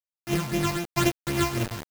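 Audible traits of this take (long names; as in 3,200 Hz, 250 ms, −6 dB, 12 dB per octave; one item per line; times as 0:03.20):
a buzz of ramps at a fixed pitch in blocks of 128 samples
phaser sweep stages 8, 3.9 Hz, lowest notch 440–1,400 Hz
a quantiser's noise floor 6 bits, dither none
amplitude modulation by smooth noise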